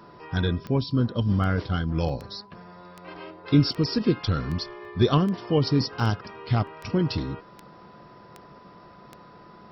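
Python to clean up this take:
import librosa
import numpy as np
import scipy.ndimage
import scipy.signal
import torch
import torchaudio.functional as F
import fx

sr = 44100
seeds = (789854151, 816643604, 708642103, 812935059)

y = fx.fix_declick_ar(x, sr, threshold=10.0)
y = fx.notch(y, sr, hz=1000.0, q=30.0)
y = fx.fix_interpolate(y, sr, at_s=(0.91, 2.09, 3.72, 4.85, 6.0, 6.67), length_ms=1.6)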